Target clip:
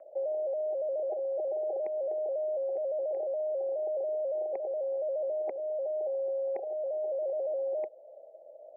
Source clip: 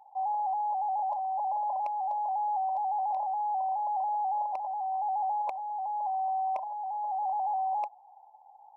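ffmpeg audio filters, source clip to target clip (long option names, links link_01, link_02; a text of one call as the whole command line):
ffmpeg -i in.wav -filter_complex "[0:a]acrossover=split=620|1400[link_01][link_02][link_03];[link_01]acompressor=threshold=-46dB:ratio=4[link_04];[link_02]acompressor=threshold=-40dB:ratio=4[link_05];[link_03]acompressor=threshold=-57dB:ratio=4[link_06];[link_04][link_05][link_06]amix=inputs=3:normalize=0,highpass=frequency=510:width_type=q:width=0.5412,highpass=frequency=510:width_type=q:width=1.307,lowpass=frequency=2400:width_type=q:width=0.5176,lowpass=frequency=2400:width_type=q:width=0.7071,lowpass=frequency=2400:width_type=q:width=1.932,afreqshift=-220,volume=4.5dB" out.wav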